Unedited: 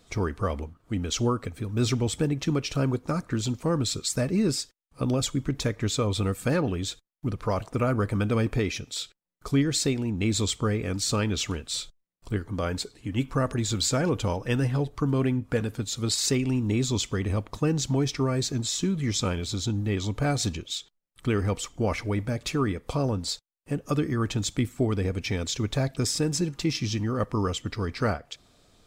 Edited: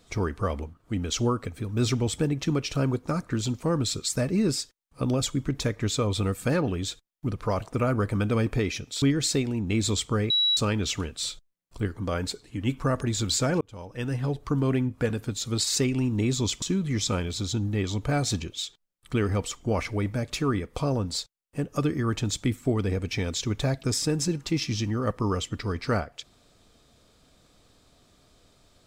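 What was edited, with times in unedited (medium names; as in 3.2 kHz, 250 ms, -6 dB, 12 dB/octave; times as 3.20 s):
9.02–9.53 s: delete
10.81–11.08 s: bleep 3.9 kHz -19.5 dBFS
14.12–14.93 s: fade in
17.13–18.75 s: delete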